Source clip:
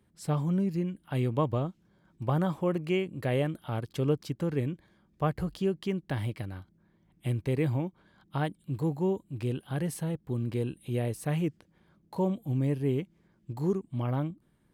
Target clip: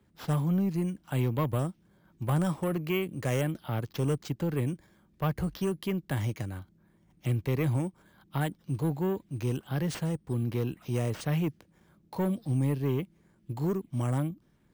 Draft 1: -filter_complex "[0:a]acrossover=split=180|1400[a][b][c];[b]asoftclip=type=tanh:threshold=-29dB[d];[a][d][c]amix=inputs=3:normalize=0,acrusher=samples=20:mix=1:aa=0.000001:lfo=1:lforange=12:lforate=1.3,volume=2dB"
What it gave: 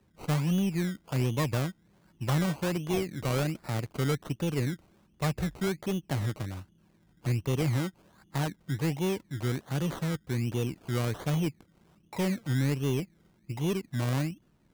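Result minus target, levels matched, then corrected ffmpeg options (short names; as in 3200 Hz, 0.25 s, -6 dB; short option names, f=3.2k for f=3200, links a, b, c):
decimation with a swept rate: distortion +12 dB
-filter_complex "[0:a]acrossover=split=180|1400[a][b][c];[b]asoftclip=type=tanh:threshold=-29dB[d];[a][d][c]amix=inputs=3:normalize=0,acrusher=samples=4:mix=1:aa=0.000001:lfo=1:lforange=2.4:lforate=1.3,volume=2dB"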